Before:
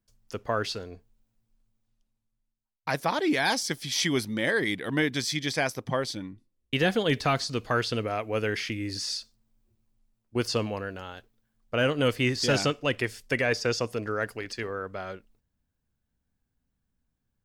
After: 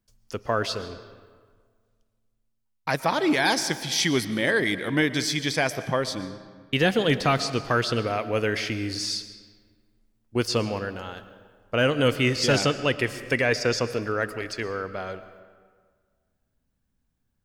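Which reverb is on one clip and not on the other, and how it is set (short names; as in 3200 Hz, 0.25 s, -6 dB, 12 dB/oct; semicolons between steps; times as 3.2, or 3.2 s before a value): digital reverb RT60 1.7 s, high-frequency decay 0.65×, pre-delay 80 ms, DRR 12.5 dB; gain +3 dB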